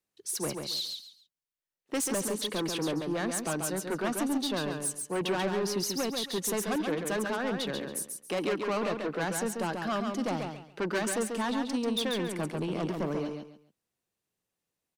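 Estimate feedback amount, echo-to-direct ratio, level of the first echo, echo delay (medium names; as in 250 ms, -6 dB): 25%, -4.5 dB, -5.0 dB, 138 ms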